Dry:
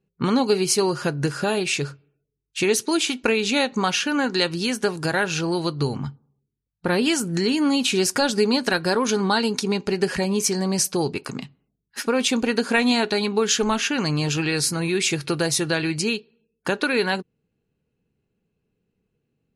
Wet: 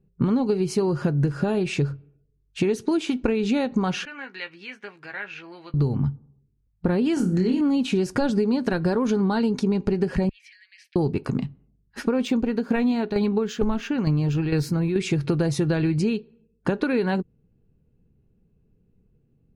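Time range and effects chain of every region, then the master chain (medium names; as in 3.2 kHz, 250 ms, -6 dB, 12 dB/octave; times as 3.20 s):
4.05–5.74 s: band-pass filter 2.2 kHz, Q 3.3 + doubling 15 ms -9 dB
7.14–7.61 s: hard clipper -11.5 dBFS + flutter echo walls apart 4.7 m, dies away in 0.32 s
10.29–10.96 s: steep high-pass 1.8 kHz 72 dB/octave + distance through air 450 m
12.25–14.96 s: tremolo saw down 2.2 Hz, depth 65% + decimation joined by straight lines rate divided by 2×
whole clip: tilt EQ -4 dB/octave; compression, threshold -19 dBFS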